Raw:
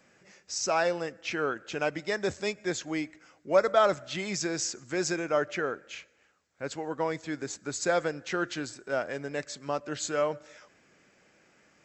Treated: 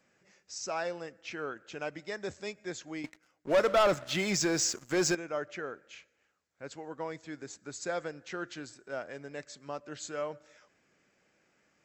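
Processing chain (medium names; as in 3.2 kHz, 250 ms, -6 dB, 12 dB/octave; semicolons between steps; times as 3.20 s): 3.04–5.15 s: waveshaping leveller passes 3; trim -8 dB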